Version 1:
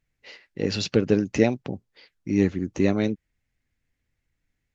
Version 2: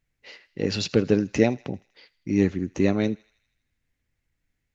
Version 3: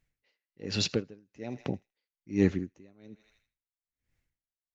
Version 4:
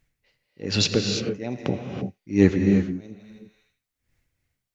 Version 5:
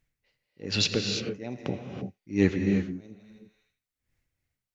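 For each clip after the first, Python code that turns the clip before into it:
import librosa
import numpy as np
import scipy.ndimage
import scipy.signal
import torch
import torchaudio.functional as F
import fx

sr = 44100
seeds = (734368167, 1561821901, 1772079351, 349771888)

y1 = fx.echo_thinned(x, sr, ms=80, feedback_pct=64, hz=990.0, wet_db=-21.5)
y2 = y1 * 10.0 ** (-37 * (0.5 - 0.5 * np.cos(2.0 * np.pi * 1.2 * np.arange(len(y1)) / sr)) / 20.0)
y3 = fx.rev_gated(y2, sr, seeds[0], gate_ms=360, shape='rising', drr_db=3.5)
y3 = y3 * librosa.db_to_amplitude(7.5)
y4 = fx.dynamic_eq(y3, sr, hz=2800.0, q=0.79, threshold_db=-39.0, ratio=4.0, max_db=5)
y4 = y4 * librosa.db_to_amplitude(-6.0)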